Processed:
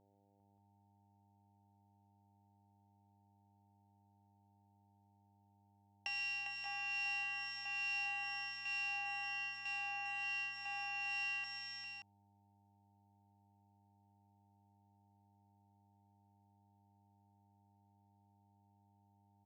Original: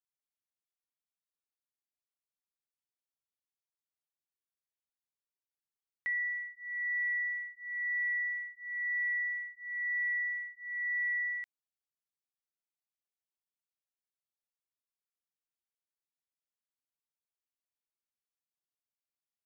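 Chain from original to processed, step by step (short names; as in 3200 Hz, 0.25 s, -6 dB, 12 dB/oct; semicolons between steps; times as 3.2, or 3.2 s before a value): sample sorter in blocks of 16 samples; gate with hold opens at -40 dBFS; compressor, threshold -40 dBFS, peak gain reduction 8.5 dB; harmonic tremolo 1.2 Hz, depth 70%, crossover 1700 Hz; buzz 100 Hz, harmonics 9, -76 dBFS -2 dB/oct; on a send: tapped delay 0.136/0.151/0.401/0.579 s -14.5/-17/-5.5/-7.5 dB; on the sum: downsampling 16000 Hz; gain +2.5 dB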